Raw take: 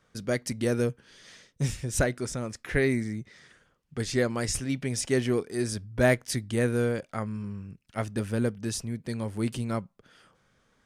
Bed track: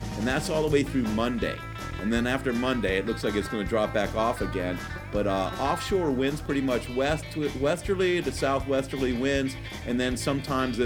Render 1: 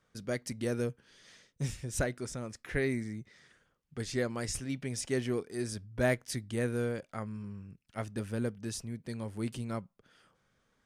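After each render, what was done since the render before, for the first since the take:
level −6.5 dB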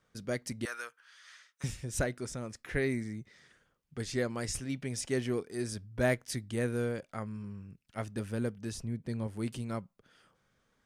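0:00.65–0:01.64: high-pass with resonance 1,300 Hz, resonance Q 2.6
0:08.72–0:09.27: spectral tilt −1.5 dB per octave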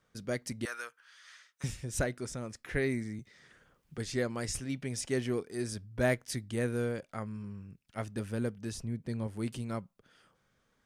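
0:03.19–0:03.98: multiband upward and downward compressor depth 70%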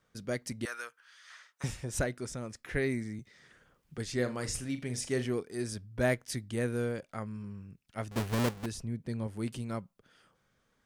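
0:01.30–0:01.99: parametric band 850 Hz +8.5 dB 1.8 octaves
0:04.15–0:05.25: flutter between parallel walls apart 6.9 metres, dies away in 0.24 s
0:08.11–0:08.66: each half-wave held at its own peak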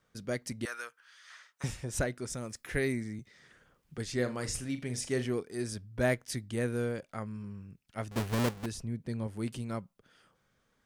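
0:02.30–0:02.92: high-shelf EQ 6,300 Hz +10 dB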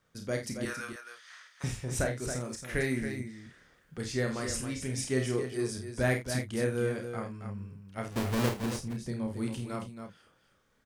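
double-tracking delay 31 ms −6.5 dB
on a send: loudspeakers that aren't time-aligned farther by 17 metres −8 dB, 94 metres −8 dB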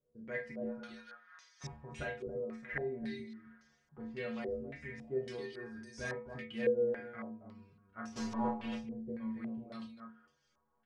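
stiff-string resonator 72 Hz, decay 0.52 s, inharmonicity 0.008
low-pass on a step sequencer 3.6 Hz 460–5,900 Hz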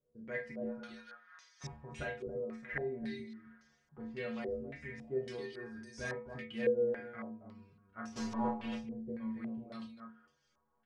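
no processing that can be heard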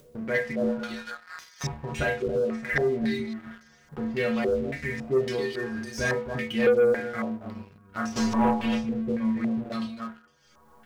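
leveller curve on the samples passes 2
in parallel at +1 dB: upward compression, threshold −34 dBFS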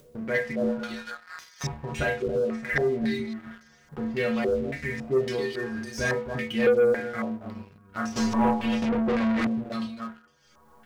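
0:08.82–0:09.47: mid-hump overdrive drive 29 dB, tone 3,100 Hz, clips at −18.5 dBFS

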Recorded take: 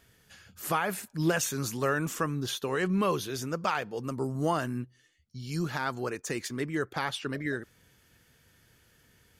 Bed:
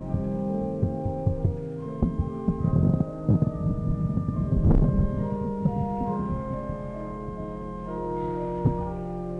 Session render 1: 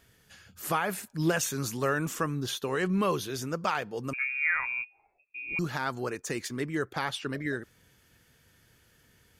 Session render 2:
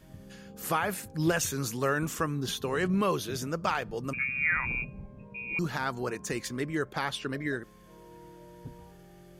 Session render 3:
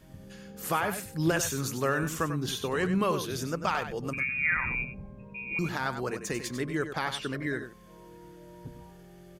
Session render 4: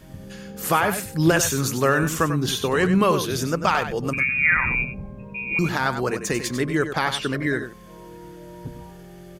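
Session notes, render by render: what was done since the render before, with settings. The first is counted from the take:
0:04.13–0:05.59: voice inversion scrambler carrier 2,600 Hz
mix in bed −21 dB
single-tap delay 96 ms −9.5 dB
level +8.5 dB

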